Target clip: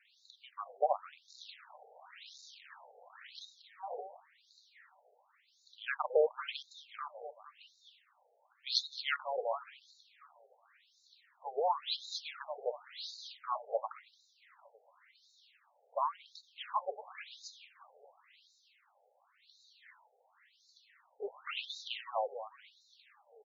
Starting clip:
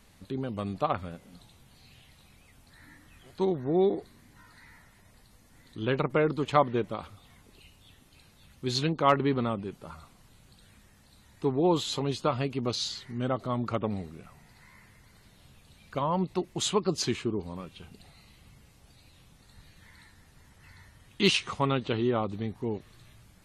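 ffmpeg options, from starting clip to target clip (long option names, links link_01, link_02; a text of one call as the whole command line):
ffmpeg -i in.wav -filter_complex "[0:a]asettb=1/sr,asplit=3[link_01][link_02][link_03];[link_01]atrim=end=1.284[link_04];[link_02]atrim=start=1.28:end=3.43,asetpts=PTS-STARTPTS,afade=type=in:duration=0.004:curve=qsin,afade=type=out:start_time=2.146:duration=0.004:curve=qsin,aeval=exprs='val(0)+0.5*0.00891*sgn(val(0))':channel_layout=same[link_05];[link_03]atrim=start=3.426[link_06];[link_04][link_05]acrossfade=duration=0.004:curve1=hsin:curve2=qsin[link_07];[link_07][link_06]acrossfade=duration=0.004:curve1=qsin:curve2=hsin,aecho=1:1:227|454|681|908|1135:0.251|0.128|0.0653|0.0333|0.017,acrossover=split=260|530|1800[link_08][link_09][link_10][link_11];[link_10]acrusher=bits=5:mode=log:mix=0:aa=0.000001[link_12];[link_08][link_09][link_12][link_11]amix=inputs=4:normalize=0,afftfilt=real='re*between(b*sr/1024,590*pow(5200/590,0.5+0.5*sin(2*PI*0.93*pts/sr))/1.41,590*pow(5200/590,0.5+0.5*sin(2*PI*0.93*pts/sr))*1.41)':imag='im*between(b*sr/1024,590*pow(5200/590,0.5+0.5*sin(2*PI*0.93*pts/sr))/1.41,590*pow(5200/590,0.5+0.5*sin(2*PI*0.93*pts/sr))*1.41)':win_size=1024:overlap=0.75" out.wav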